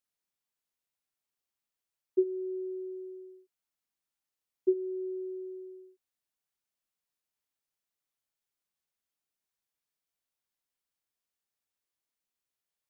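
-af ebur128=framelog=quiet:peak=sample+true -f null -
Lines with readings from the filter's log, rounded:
Integrated loudness:
  I:         -35.3 LUFS
  Threshold: -46.1 LUFS
Loudness range:
  LRA:         9.9 LU
  Threshold: -59.3 LUFS
  LRA low:   -46.6 LUFS
  LRA high:  -36.7 LUFS
Sample peak:
  Peak:      -16.9 dBFS
True peak:
  Peak:      -16.9 dBFS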